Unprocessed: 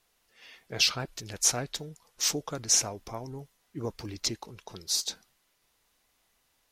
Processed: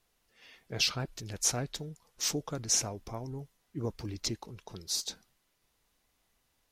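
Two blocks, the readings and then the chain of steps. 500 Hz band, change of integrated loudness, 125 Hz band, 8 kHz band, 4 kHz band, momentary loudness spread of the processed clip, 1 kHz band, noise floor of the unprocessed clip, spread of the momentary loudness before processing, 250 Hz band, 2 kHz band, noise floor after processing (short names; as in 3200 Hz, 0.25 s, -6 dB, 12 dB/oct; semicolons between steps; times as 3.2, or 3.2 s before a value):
-2.0 dB, -4.5 dB, +1.5 dB, -4.5 dB, -4.5 dB, 16 LU, -3.5 dB, -72 dBFS, 19 LU, 0.0 dB, -4.5 dB, -76 dBFS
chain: low shelf 350 Hz +7 dB; gain -4.5 dB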